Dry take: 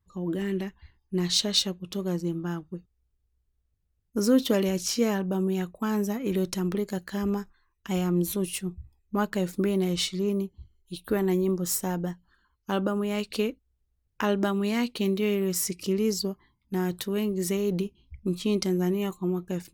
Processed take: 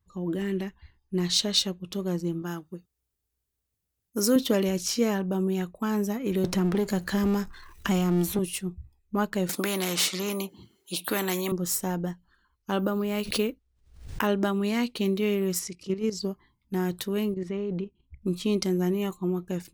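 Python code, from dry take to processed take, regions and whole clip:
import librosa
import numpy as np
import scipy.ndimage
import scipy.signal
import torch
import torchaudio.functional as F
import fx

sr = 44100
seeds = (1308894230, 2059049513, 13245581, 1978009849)

y = fx.chain(x, sr, fx.highpass(hz=200.0, slope=6),
    fx.high_shelf(hz=5600.0, db=10.5), at=(2.42, 4.36))
y = fx.chain(y, sr, fx.power_curve(exponent=0.7),
    fx.band_squash(depth_pct=70), at=(6.44, 8.39))
y = fx.chain(y, sr, fx.highpass(hz=180.0, slope=24),
    fx.low_shelf(hz=460.0, db=3.0),
    fx.spectral_comp(ratio=2.0), at=(9.49, 11.52))
y = fx.chain(y, sr, fx.high_shelf(hz=12000.0, db=-4.0),
    fx.resample_bad(factor=3, down='none', up='hold'),
    fx.pre_swell(db_per_s=95.0), at=(12.79, 14.27))
y = fx.chain(y, sr, fx.lowpass(hz=7200.0, slope=12),
    fx.level_steps(step_db=12), at=(15.59, 16.23))
y = fx.chain(y, sr, fx.lowpass(hz=2400.0, slope=12),
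    fx.level_steps(step_db=10), at=(17.34, 18.22))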